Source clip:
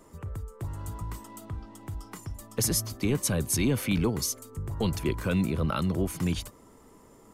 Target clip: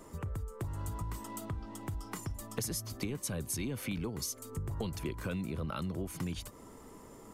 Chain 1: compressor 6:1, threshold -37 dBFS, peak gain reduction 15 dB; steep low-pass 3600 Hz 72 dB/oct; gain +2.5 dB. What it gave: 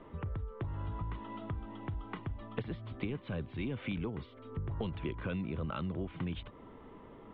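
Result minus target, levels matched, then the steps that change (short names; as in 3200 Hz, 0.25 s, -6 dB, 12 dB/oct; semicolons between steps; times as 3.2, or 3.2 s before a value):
4000 Hz band -5.0 dB
remove: steep low-pass 3600 Hz 72 dB/oct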